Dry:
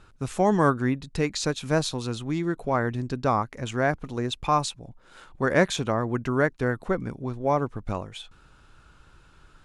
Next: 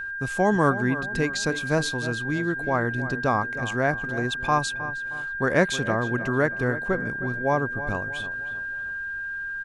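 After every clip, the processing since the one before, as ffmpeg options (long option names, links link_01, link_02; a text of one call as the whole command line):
ffmpeg -i in.wav -filter_complex "[0:a]aeval=exprs='val(0)+0.0316*sin(2*PI*1600*n/s)':channel_layout=same,asplit=2[link_01][link_02];[link_02]adelay=313,lowpass=frequency=2500:poles=1,volume=-13dB,asplit=2[link_03][link_04];[link_04]adelay=313,lowpass=frequency=2500:poles=1,volume=0.43,asplit=2[link_05][link_06];[link_06]adelay=313,lowpass=frequency=2500:poles=1,volume=0.43,asplit=2[link_07][link_08];[link_08]adelay=313,lowpass=frequency=2500:poles=1,volume=0.43[link_09];[link_01][link_03][link_05][link_07][link_09]amix=inputs=5:normalize=0" out.wav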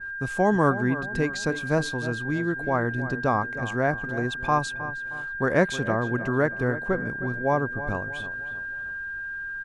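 ffmpeg -i in.wav -af "adynamicequalizer=threshold=0.0158:dfrequency=1800:dqfactor=0.7:tfrequency=1800:tqfactor=0.7:attack=5:release=100:ratio=0.375:range=3:mode=cutabove:tftype=highshelf" out.wav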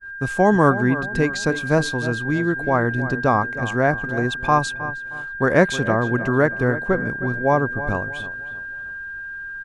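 ffmpeg -i in.wav -af "agate=range=-33dB:threshold=-30dB:ratio=3:detection=peak,volume=5.5dB" out.wav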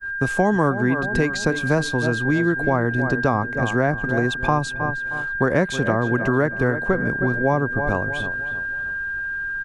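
ffmpeg -i in.wav -filter_complex "[0:a]acrossover=split=290|830[link_01][link_02][link_03];[link_01]acompressor=threshold=-30dB:ratio=4[link_04];[link_02]acompressor=threshold=-30dB:ratio=4[link_05];[link_03]acompressor=threshold=-33dB:ratio=4[link_06];[link_04][link_05][link_06]amix=inputs=3:normalize=0,volume=7dB" out.wav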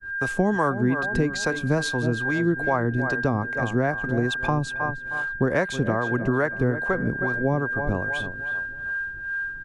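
ffmpeg -i in.wav -filter_complex "[0:a]acrossover=split=480[link_01][link_02];[link_01]aeval=exprs='val(0)*(1-0.7/2+0.7/2*cos(2*PI*2.4*n/s))':channel_layout=same[link_03];[link_02]aeval=exprs='val(0)*(1-0.7/2-0.7/2*cos(2*PI*2.4*n/s))':channel_layout=same[link_04];[link_03][link_04]amix=inputs=2:normalize=0" out.wav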